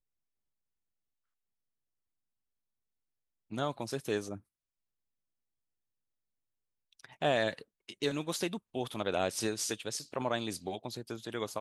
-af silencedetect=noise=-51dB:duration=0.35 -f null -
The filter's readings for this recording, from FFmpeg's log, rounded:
silence_start: 0.00
silence_end: 3.51 | silence_duration: 3.51
silence_start: 4.39
silence_end: 6.93 | silence_duration: 2.54